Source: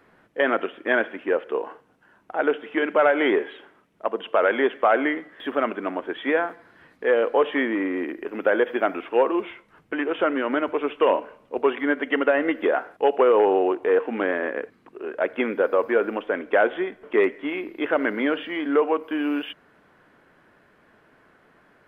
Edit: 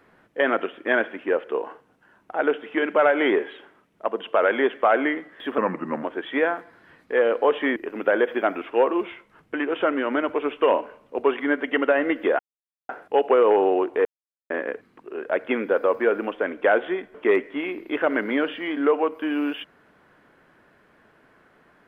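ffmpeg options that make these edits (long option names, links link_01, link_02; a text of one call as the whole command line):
ffmpeg -i in.wav -filter_complex "[0:a]asplit=7[link_01][link_02][link_03][link_04][link_05][link_06][link_07];[link_01]atrim=end=5.584[link_08];[link_02]atrim=start=5.58:end=5.95,asetpts=PTS-STARTPTS,asetrate=36162,aresample=44100[link_09];[link_03]atrim=start=5.946:end=7.682[link_10];[link_04]atrim=start=8.148:end=12.78,asetpts=PTS-STARTPTS,afade=type=out:start_time=4.628:duration=0.004:curve=hsin,apad=pad_dur=0.5[link_11];[link_05]atrim=start=12.78:end=13.94,asetpts=PTS-STARTPTS,afade=type=in:duration=0.004:curve=hsin,afade=type=out:start_time=1.156:duration=0.004:curve=hsin[link_12];[link_06]atrim=start=13.94:end=14.39,asetpts=PTS-STARTPTS,volume=0[link_13];[link_07]atrim=start=14.39,asetpts=PTS-STARTPTS,afade=type=in:duration=0.004:curve=hsin[link_14];[link_08][link_09]acrossfade=duration=0.004:curve1=hsin:curve2=hsin[link_15];[link_15][link_10]acrossfade=duration=0.004:curve1=hsin:curve2=hsin[link_16];[link_11][link_12][link_13][link_14]concat=n=4:v=0:a=1[link_17];[link_16][link_17]acrossfade=duration=0.004:curve1=hsin:curve2=hsin" out.wav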